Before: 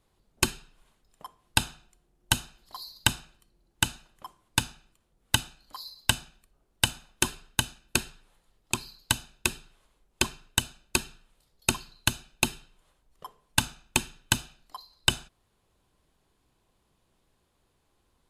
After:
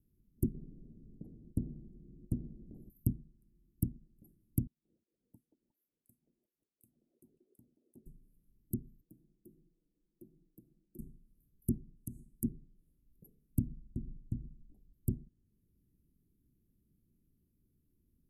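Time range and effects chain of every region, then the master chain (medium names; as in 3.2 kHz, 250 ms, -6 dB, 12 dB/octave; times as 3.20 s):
0.54–2.90 s: low-pass 1.6 kHz + spectrum-flattening compressor 2:1
4.67–8.06 s: wah-wah 2.9 Hz 470–2600 Hz, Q 6 + repeats whose band climbs or falls 179 ms, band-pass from 480 Hz, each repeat 1.4 oct, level -0.5 dB + upward compressor, threshold -49 dBFS
9.01–10.99 s: three-band isolator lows -17 dB, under 250 Hz, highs -22 dB, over 2.2 kHz + comb 6.1 ms, depth 72% + compression 2:1, threshold -54 dBFS
11.96–12.44 s: compression 3:1, threshold -33 dBFS + peaking EQ 7.8 kHz +14.5 dB 1.2 oct
13.67–14.94 s: bass shelf 130 Hz +10.5 dB + compression 2:1, threshold -35 dBFS + low-pass 4.6 kHz
whole clip: inverse Chebyshev band-stop 1–5 kHz, stop band 70 dB; low-pass that closes with the level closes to 1.9 kHz, closed at -35.5 dBFS; bass shelf 160 Hz -8 dB; trim +5.5 dB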